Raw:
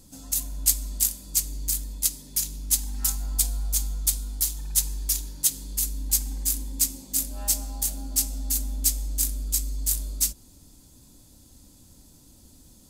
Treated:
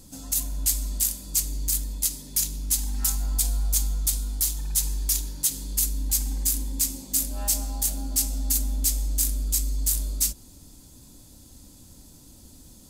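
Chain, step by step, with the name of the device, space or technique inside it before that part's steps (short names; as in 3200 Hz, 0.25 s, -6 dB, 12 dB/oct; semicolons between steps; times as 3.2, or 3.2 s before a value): soft clipper into limiter (soft clip -7 dBFS, distortion -25 dB; limiter -14.5 dBFS, peak gain reduction 6.5 dB); gain +3.5 dB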